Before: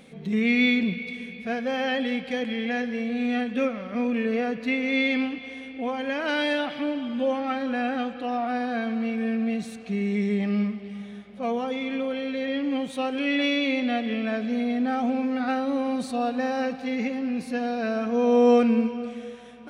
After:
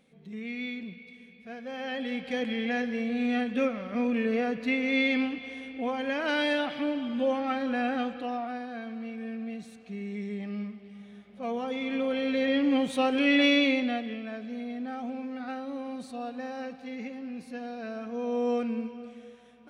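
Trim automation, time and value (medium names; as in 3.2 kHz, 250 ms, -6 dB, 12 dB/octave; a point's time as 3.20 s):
1.39 s -15 dB
2.40 s -2 dB
8.14 s -2 dB
8.66 s -10.5 dB
10.92 s -10.5 dB
12.35 s +2 dB
13.60 s +2 dB
14.23 s -10.5 dB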